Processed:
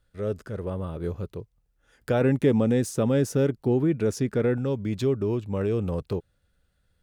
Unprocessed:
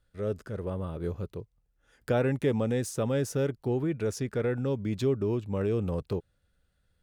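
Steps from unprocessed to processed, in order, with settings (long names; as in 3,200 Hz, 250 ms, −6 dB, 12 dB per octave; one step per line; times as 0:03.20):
0:02.21–0:04.58: parametric band 240 Hz +5.5 dB 1.6 octaves
level +2.5 dB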